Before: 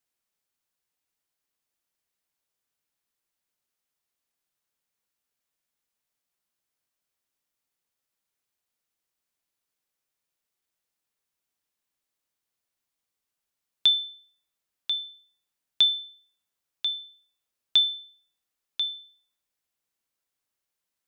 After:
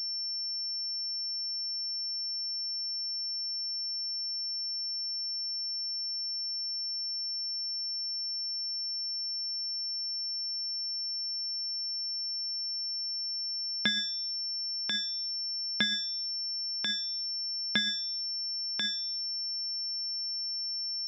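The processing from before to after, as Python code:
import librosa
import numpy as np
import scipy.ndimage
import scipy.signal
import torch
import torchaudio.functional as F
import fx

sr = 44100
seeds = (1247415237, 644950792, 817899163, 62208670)

p1 = scipy.signal.sosfilt(scipy.signal.butter(2, 510.0, 'highpass', fs=sr, output='sos'), x)
p2 = fx.over_compress(p1, sr, threshold_db=-29.0, ratio=-0.5)
p3 = p1 + (p2 * 10.0 ** (1.0 / 20.0))
y = fx.pwm(p3, sr, carrier_hz=5400.0)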